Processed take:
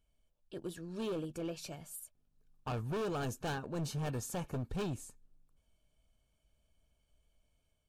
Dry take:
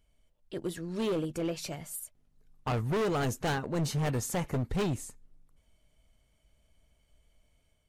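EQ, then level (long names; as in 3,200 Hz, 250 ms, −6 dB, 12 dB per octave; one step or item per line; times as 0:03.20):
Butterworth band-reject 2,000 Hz, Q 6.1
−7.0 dB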